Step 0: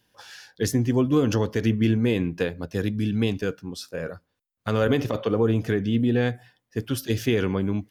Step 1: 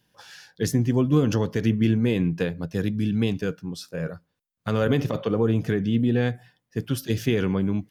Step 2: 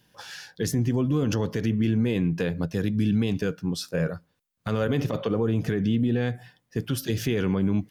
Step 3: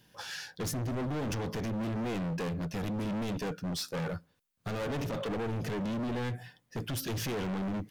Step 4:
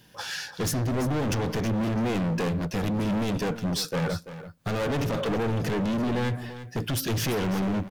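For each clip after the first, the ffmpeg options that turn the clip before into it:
-af "equalizer=f=160:w=2.9:g=9.5,volume=0.841"
-af "alimiter=limit=0.0944:level=0:latency=1:release=153,volume=1.78"
-af "volume=39.8,asoftclip=hard,volume=0.0251"
-af "aecho=1:1:338:0.224,volume=2.24"

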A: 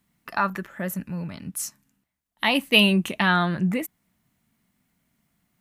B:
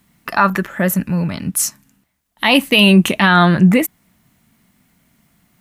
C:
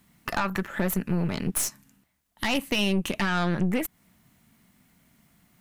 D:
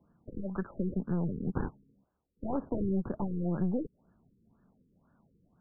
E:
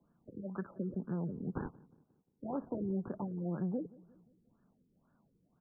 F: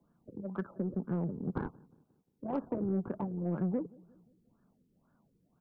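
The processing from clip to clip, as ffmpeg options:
-af "alimiter=level_in=5.01:limit=0.891:release=50:level=0:latency=1,volume=0.891"
-af "acompressor=threshold=0.112:ratio=6,aeval=exprs='(tanh(8.91*val(0)+0.7)-tanh(0.7))/8.91':c=same"
-filter_complex "[0:a]acrossover=split=140|2700[s0][s1][s2];[s2]acrusher=samples=40:mix=1:aa=0.000001:lfo=1:lforange=64:lforate=0.74[s3];[s0][s1][s3]amix=inputs=3:normalize=0,afftfilt=real='re*lt(b*sr/1024,480*pow(1800/480,0.5+0.5*sin(2*PI*2*pts/sr)))':imag='im*lt(b*sr/1024,480*pow(1800/480,0.5+0.5*sin(2*PI*2*pts/sr)))':win_size=1024:overlap=0.75,volume=0.562"
-filter_complex "[0:a]acrossover=split=100[s0][s1];[s0]aeval=exprs='max(val(0),0)':c=same[s2];[s1]asplit=2[s3][s4];[s4]adelay=177,lowpass=f=940:p=1,volume=0.0841,asplit=2[s5][s6];[s6]adelay=177,lowpass=f=940:p=1,volume=0.53,asplit=2[s7][s8];[s8]adelay=177,lowpass=f=940:p=1,volume=0.53,asplit=2[s9][s10];[s10]adelay=177,lowpass=f=940:p=1,volume=0.53[s11];[s3][s5][s7][s9][s11]amix=inputs=5:normalize=0[s12];[s2][s12]amix=inputs=2:normalize=0,volume=0.596"
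-af "aeval=exprs='0.0562*(cos(1*acos(clip(val(0)/0.0562,-1,1)))-cos(1*PI/2))+0.00178*(cos(7*acos(clip(val(0)/0.0562,-1,1)))-cos(7*PI/2))':c=same,volume=1.5"

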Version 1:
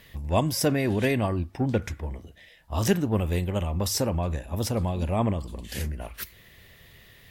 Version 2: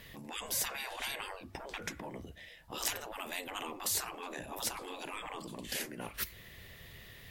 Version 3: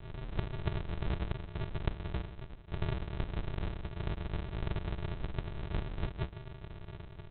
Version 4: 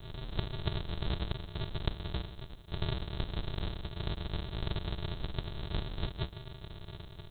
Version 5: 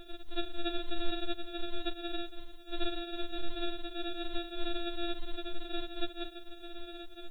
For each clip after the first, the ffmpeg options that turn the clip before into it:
-af "afftfilt=real='re*lt(hypot(re,im),0.0631)':imag='im*lt(hypot(re,im),0.0631)':win_size=1024:overlap=0.75"
-af "flanger=delay=5.8:depth=5.9:regen=-62:speed=0.89:shape=sinusoidal,aresample=8000,acrusher=samples=31:mix=1:aa=0.000001,aresample=44100,volume=3.76"
-af "aexciter=amount=6.2:drive=5:freq=3500"
-af "afftfilt=real='re*4*eq(mod(b,16),0)':imag='im*4*eq(mod(b,16),0)':win_size=2048:overlap=0.75,volume=1.78"

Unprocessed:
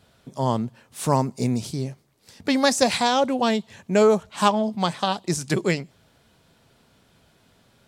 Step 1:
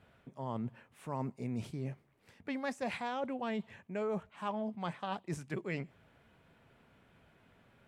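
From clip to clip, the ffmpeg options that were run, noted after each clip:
-af "highshelf=f=3300:t=q:w=1.5:g=-11,areverse,acompressor=threshold=0.0316:ratio=5,areverse,volume=0.531"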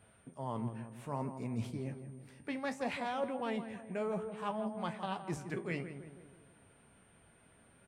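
-filter_complex "[0:a]asplit=2[s0][s1];[s1]adelay=164,lowpass=f=1600:p=1,volume=0.355,asplit=2[s2][s3];[s3]adelay=164,lowpass=f=1600:p=1,volume=0.55,asplit=2[s4][s5];[s5]adelay=164,lowpass=f=1600:p=1,volume=0.55,asplit=2[s6][s7];[s7]adelay=164,lowpass=f=1600:p=1,volume=0.55,asplit=2[s8][s9];[s9]adelay=164,lowpass=f=1600:p=1,volume=0.55,asplit=2[s10][s11];[s11]adelay=164,lowpass=f=1600:p=1,volume=0.55[s12];[s0][s2][s4][s6][s8][s10][s12]amix=inputs=7:normalize=0,flanger=delay=9:depth=8.5:regen=62:speed=0.62:shape=sinusoidal,aeval=exprs='val(0)+0.000224*sin(2*PI*8900*n/s)':c=same,volume=1.58"

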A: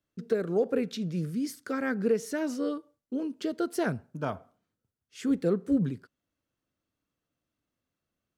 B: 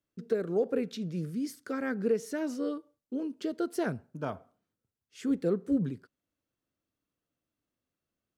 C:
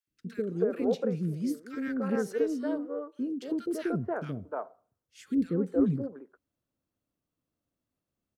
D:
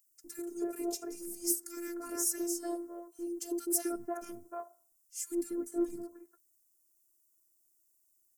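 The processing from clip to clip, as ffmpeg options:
-af "equalizer=f=380:t=o:w=1.5:g=2.5,volume=0.631"
-filter_complex "[0:a]asplit=2[s0][s1];[s1]adynamicsmooth=sensitivity=3:basefreq=2000,volume=0.944[s2];[s0][s2]amix=inputs=2:normalize=0,acrossover=split=400|1600[s3][s4][s5];[s3]adelay=70[s6];[s4]adelay=300[s7];[s6][s7][s5]amix=inputs=3:normalize=0,volume=0.794"
-af "aexciter=amount=12:drive=9:freq=5700,afftfilt=real='hypot(re,im)*cos(PI*b)':imag='0':win_size=512:overlap=0.75,volume=0.668"

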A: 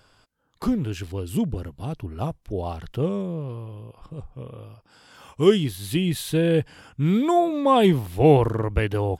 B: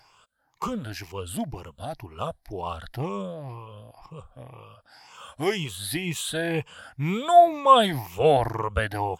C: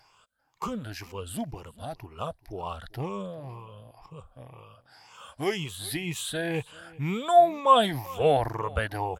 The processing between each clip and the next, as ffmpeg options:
-af "afftfilt=real='re*pow(10,13/40*sin(2*PI*(0.75*log(max(b,1)*sr/1024/100)/log(2)-(2)*(pts-256)/sr)))':imag='im*pow(10,13/40*sin(2*PI*(0.75*log(max(b,1)*sr/1024/100)/log(2)-(2)*(pts-256)/sr)))':win_size=1024:overlap=0.75,lowshelf=f=510:t=q:w=1.5:g=-8.5"
-af "aecho=1:1:392:0.0794,volume=0.708"

